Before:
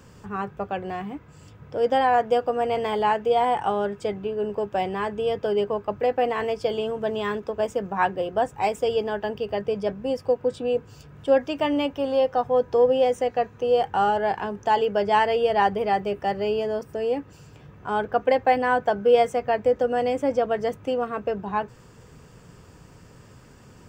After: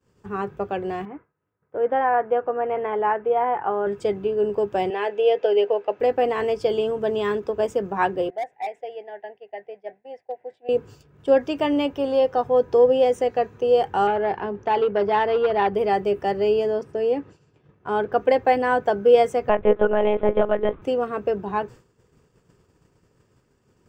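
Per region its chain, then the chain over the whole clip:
0:01.05–0:03.87: low-pass filter 1,800 Hz 24 dB per octave + spectral tilt +3 dB per octave
0:04.90–0:06.00: loudspeaker in its box 470–6,200 Hz, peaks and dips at 490 Hz +7 dB, 720 Hz +6 dB, 1,200 Hz −5 dB, 1,900 Hz +3 dB, 2,700 Hz +7 dB, 5,100 Hz −4 dB + notch filter 1,100 Hz, Q 11
0:08.30–0:10.69: pair of resonant band-passes 1,200 Hz, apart 1.4 octaves + hard clipping −24 dBFS
0:14.07–0:15.74: high-frequency loss of the air 170 metres + saturating transformer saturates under 880 Hz
0:16.70–0:18.12: high-pass filter 78 Hz + high-frequency loss of the air 61 metres
0:19.49–0:20.82: parametric band 1,100 Hz +6 dB 1.1 octaves + one-pitch LPC vocoder at 8 kHz 210 Hz
whole clip: downward expander −38 dBFS; parametric band 380 Hz +7 dB 0.58 octaves

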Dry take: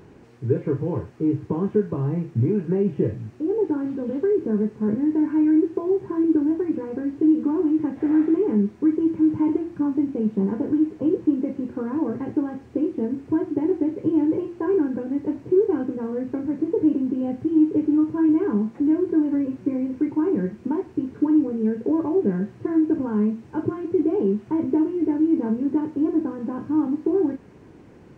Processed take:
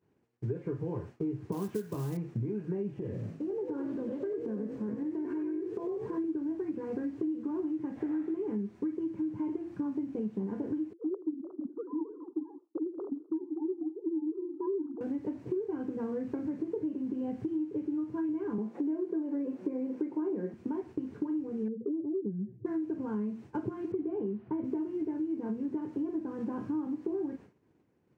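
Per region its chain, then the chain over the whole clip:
0:01.52–0:02.17: floating-point word with a short mantissa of 4 bits + high-shelf EQ 2,000 Hz +11.5 dB
0:02.92–0:06.18: downward compressor 2.5 to 1, threshold −30 dBFS + echo with shifted repeats 96 ms, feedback 34%, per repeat +52 Hz, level −7.5 dB
0:10.93–0:15.01: three sine waves on the formant tracks + Butterworth low-pass 1,300 Hz 72 dB per octave + feedback echo with a swinging delay time 84 ms, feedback 63%, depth 180 cents, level −20 dB
0:18.58–0:20.54: high-pass filter 170 Hz 24 dB per octave + parametric band 530 Hz +9 dB 1.8 octaves
0:21.68–0:22.66: expanding power law on the bin magnitudes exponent 1.9 + flat-topped bell 1,100 Hz −12.5 dB 1.2 octaves + one half of a high-frequency compander decoder only
0:23.92–0:24.64: high-frequency loss of the air 280 metres + one half of a high-frequency compander decoder only
whole clip: high-pass filter 71 Hz; downward expander −34 dBFS; downward compressor 6 to 1, threshold −29 dBFS; level −2.5 dB

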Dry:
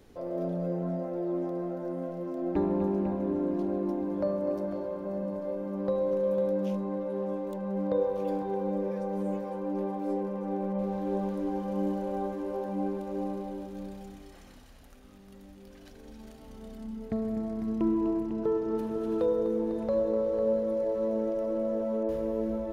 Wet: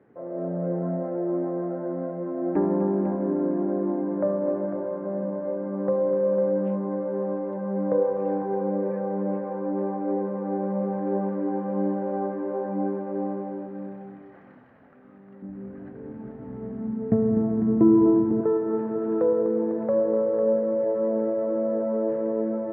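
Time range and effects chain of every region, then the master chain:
0:15.42–0:18.41: spectral tilt −4 dB per octave + double-tracking delay 16 ms −7 dB + feedback echo at a low word length 105 ms, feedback 35%, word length 8 bits, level −14 dB
whole clip: Chebyshev band-pass filter 120–1,800 Hz, order 3; mains-hum notches 50/100/150 Hz; automatic gain control gain up to 5 dB

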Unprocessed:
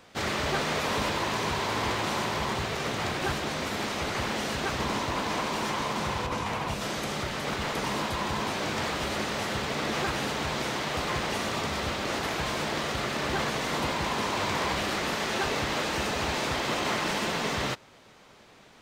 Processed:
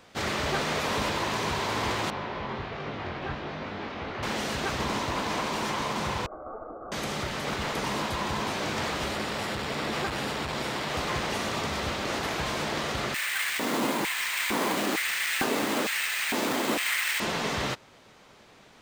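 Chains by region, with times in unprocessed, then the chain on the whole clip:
0:02.10–0:04.23: high-frequency loss of the air 270 metres + chorus effect 1.3 Hz, delay 20 ms, depth 3.2 ms
0:06.26–0:06.92: Chebyshev high-pass filter 1,900 Hz, order 6 + comb filter 1.2 ms, depth 90% + voice inversion scrambler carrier 3,100 Hz
0:09.11–0:10.90: notch filter 6,200 Hz, Q 11 + saturating transformer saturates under 400 Hz
0:13.14–0:17.20: auto-filter high-pass square 1.1 Hz 250–2,000 Hz + bad sample-rate conversion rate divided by 4×, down none, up hold
whole clip: no processing

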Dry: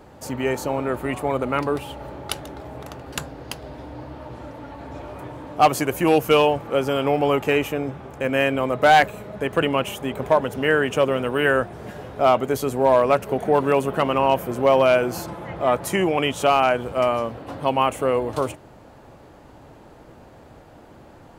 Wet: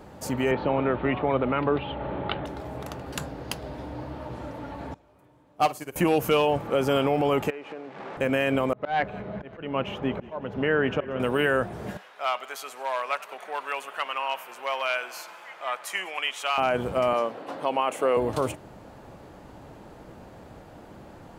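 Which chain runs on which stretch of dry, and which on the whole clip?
0:00.51–0:02.46: Butterworth low-pass 3,700 Hz 48 dB per octave + multiband upward and downward compressor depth 40%
0:04.94–0:05.96: high-shelf EQ 5,500 Hz +6.5 dB + flutter between parallel walls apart 8.7 metres, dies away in 0.29 s + expander for the loud parts 2.5 to 1, over −26 dBFS
0:07.50–0:08.17: linear delta modulator 64 kbit/s, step −29 dBFS + downward compressor 10 to 1, threshold −31 dBFS + band-pass filter 330–2,000 Hz
0:08.73–0:11.20: volume swells 358 ms + high-frequency loss of the air 260 metres + echo with shifted repeats 182 ms, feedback 60%, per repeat −34 Hz, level −20 dB
0:11.97–0:16.58: high-pass filter 1,500 Hz + high-shelf EQ 5,800 Hz −10 dB + feedback echo with a swinging delay time 97 ms, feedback 77%, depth 109 cents, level −20 dB
0:17.13–0:18.17: high-pass filter 340 Hz + high-shelf EQ 10,000 Hz −8 dB
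whole clip: brickwall limiter −13.5 dBFS; parametric band 190 Hz +5.5 dB 0.21 octaves

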